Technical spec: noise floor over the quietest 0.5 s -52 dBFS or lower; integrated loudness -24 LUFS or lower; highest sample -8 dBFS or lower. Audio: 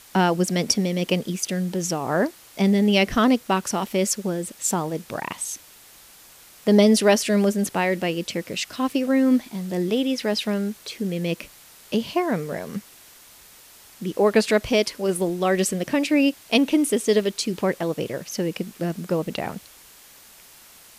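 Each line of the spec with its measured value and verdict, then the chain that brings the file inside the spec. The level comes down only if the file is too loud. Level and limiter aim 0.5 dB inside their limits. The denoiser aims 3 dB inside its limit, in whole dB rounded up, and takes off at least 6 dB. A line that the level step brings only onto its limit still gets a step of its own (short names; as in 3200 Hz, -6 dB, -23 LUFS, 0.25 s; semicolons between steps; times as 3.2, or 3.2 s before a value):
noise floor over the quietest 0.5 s -49 dBFS: fail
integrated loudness -23.0 LUFS: fail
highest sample -5.0 dBFS: fail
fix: denoiser 6 dB, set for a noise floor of -49 dBFS; gain -1.5 dB; limiter -8.5 dBFS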